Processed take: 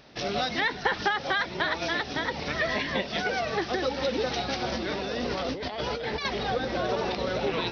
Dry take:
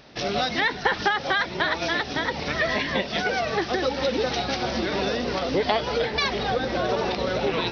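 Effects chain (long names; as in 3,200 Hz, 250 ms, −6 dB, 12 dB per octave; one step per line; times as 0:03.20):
0:04.72–0:06.25: compressor whose output falls as the input rises −28 dBFS, ratio −1
level −3.5 dB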